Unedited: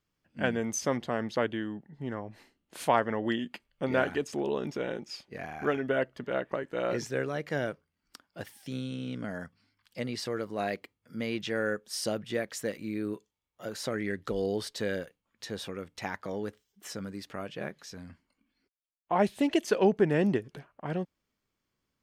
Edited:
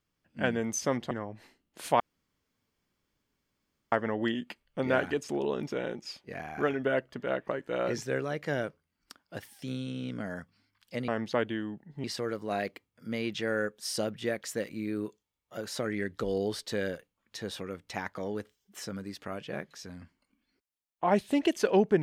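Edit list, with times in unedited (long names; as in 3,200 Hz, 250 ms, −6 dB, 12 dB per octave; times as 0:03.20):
0:01.11–0:02.07: move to 0:10.12
0:02.96: splice in room tone 1.92 s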